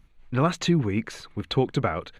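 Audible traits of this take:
background noise floor −58 dBFS
spectral slope −5.5 dB per octave

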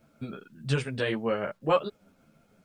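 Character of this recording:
tremolo triangle 6.4 Hz, depth 35%
a quantiser's noise floor 12 bits, dither none
a shimmering, thickened sound

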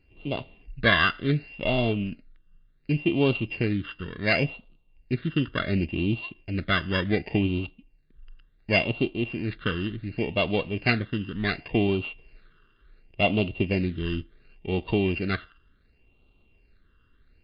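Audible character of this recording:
a buzz of ramps at a fixed pitch in blocks of 16 samples
phaser sweep stages 12, 0.69 Hz, lowest notch 740–1,700 Hz
MP3

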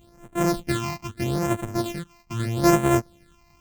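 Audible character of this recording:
a buzz of ramps at a fixed pitch in blocks of 128 samples
phaser sweep stages 8, 0.79 Hz, lowest notch 450–4,800 Hz

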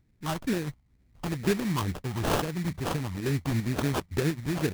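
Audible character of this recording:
phaser sweep stages 12, 2.2 Hz, lowest notch 450–1,100 Hz
tremolo saw up 2.5 Hz, depth 45%
aliases and images of a low sample rate 2,100 Hz, jitter 20%

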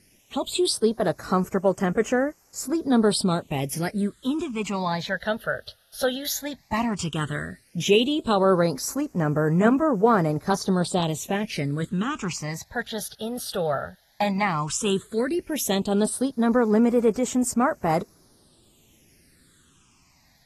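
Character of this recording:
a quantiser's noise floor 10 bits, dither triangular
phaser sweep stages 8, 0.13 Hz, lowest notch 300–3,800 Hz
AAC

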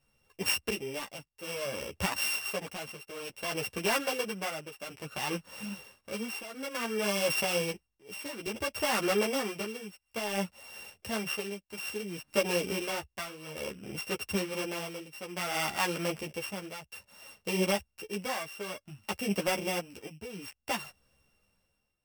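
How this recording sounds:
a buzz of ramps at a fixed pitch in blocks of 16 samples
tremolo triangle 0.58 Hz, depth 85%
a shimmering, thickened sound

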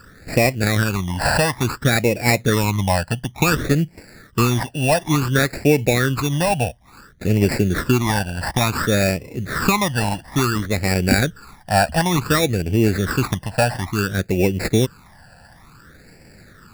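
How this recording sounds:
aliases and images of a low sample rate 3,100 Hz, jitter 0%
phaser sweep stages 12, 0.57 Hz, lowest notch 370–1,200 Hz

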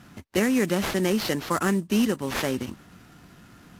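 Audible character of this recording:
aliases and images of a low sample rate 8,800 Hz, jitter 20%
AAC

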